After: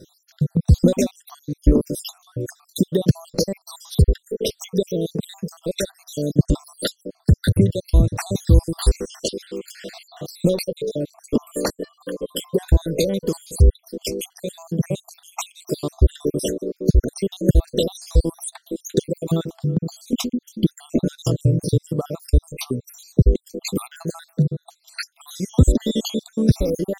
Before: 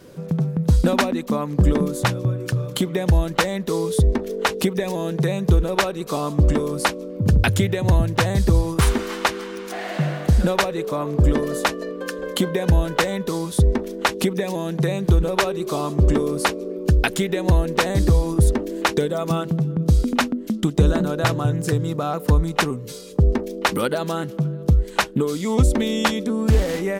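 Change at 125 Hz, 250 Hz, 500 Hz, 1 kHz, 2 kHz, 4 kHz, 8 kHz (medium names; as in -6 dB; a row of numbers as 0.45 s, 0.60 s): -0.5 dB, -0.5 dB, -1.5 dB, -14.5 dB, -14.0 dB, -3.0 dB, -0.5 dB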